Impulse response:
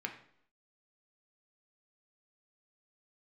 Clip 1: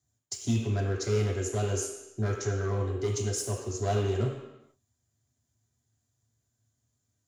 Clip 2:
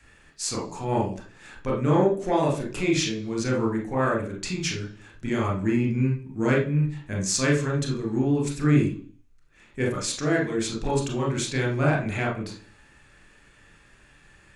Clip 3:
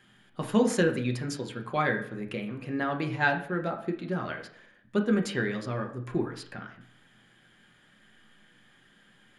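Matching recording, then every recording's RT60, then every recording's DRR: 3; no single decay rate, 0.45 s, 0.65 s; -1.0 dB, -1.5 dB, 3.0 dB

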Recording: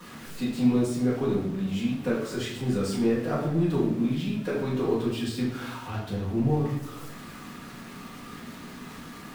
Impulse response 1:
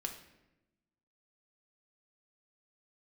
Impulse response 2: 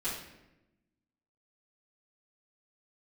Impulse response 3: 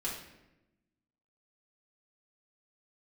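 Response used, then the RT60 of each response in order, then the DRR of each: 2; 0.95 s, 0.95 s, 0.95 s; 3.0 dB, -12.5 dB, -6.5 dB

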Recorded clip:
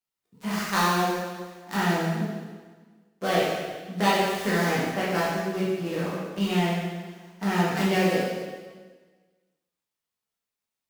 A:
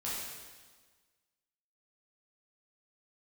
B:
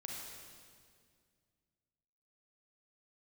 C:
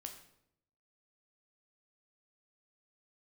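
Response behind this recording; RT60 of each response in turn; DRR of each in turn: A; 1.4 s, 2.1 s, 0.75 s; -8.5 dB, -2.0 dB, 3.5 dB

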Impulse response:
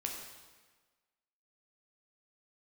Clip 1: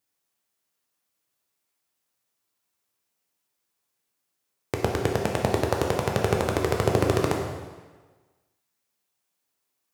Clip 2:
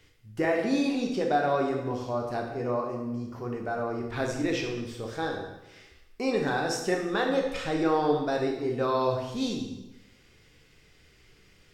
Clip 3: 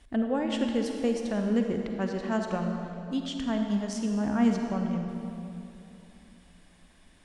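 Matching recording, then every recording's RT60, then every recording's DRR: 1; 1.4 s, 0.95 s, 2.9 s; 0.0 dB, 0.5 dB, 3.0 dB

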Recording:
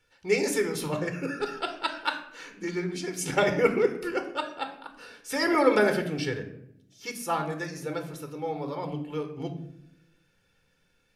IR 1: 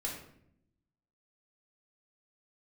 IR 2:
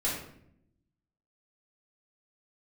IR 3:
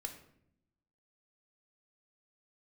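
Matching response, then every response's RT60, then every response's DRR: 3; 0.70 s, 0.70 s, 0.70 s; -2.0 dB, -6.5 dB, 5.0 dB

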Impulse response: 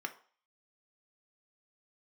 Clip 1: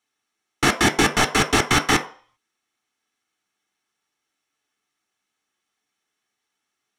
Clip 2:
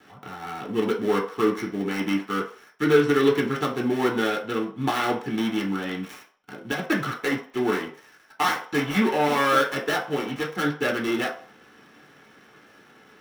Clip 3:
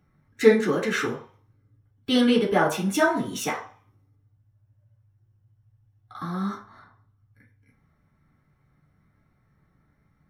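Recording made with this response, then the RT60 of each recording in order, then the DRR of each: 1; 0.45 s, 0.45 s, 0.45 s; 6.0 dB, -1.5 dB, -5.5 dB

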